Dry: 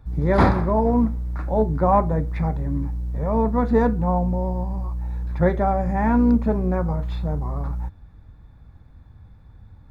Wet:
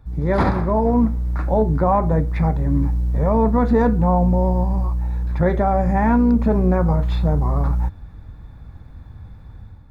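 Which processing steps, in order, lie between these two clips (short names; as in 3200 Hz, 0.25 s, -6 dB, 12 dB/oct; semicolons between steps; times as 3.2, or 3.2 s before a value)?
AGC gain up to 8 dB; limiter -8 dBFS, peak gain reduction 6 dB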